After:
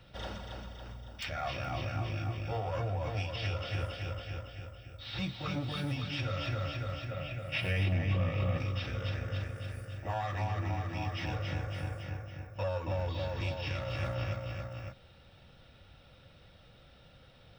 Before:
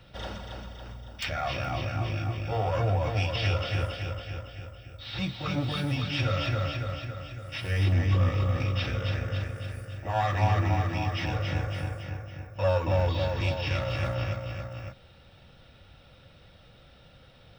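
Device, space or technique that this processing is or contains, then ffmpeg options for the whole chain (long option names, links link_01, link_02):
clipper into limiter: -filter_complex "[0:a]asoftclip=type=hard:threshold=-14dB,alimiter=limit=-21.5dB:level=0:latency=1:release=479,asettb=1/sr,asplit=3[link_01][link_02][link_03];[link_01]atrim=end=7.114[link_04];[link_02]atrim=start=7.11:end=8.58,asetpts=PTS-STARTPTS,afade=type=in:duration=0.004:curve=qsin,afade=type=out:start_time=1.466:duration=0.004:curve=qsin,equalizer=frequency=160:width_type=o:width=0.67:gain=9,equalizer=frequency=630:width_type=o:width=0.67:gain=8,equalizer=frequency=2500:width_type=o:width=0.67:gain=9,equalizer=frequency=6300:width_type=o:width=0.67:gain=-4[link_05];[link_03]atrim=start=8.576[link_06];[link_04][link_05]acrossfade=duration=0.004:curve1=hsin:curve2=qsin[link_07];[link_07][link_06]acrossfade=duration=0.004:curve1=qsin:curve2=hsin,volume=-3.5dB"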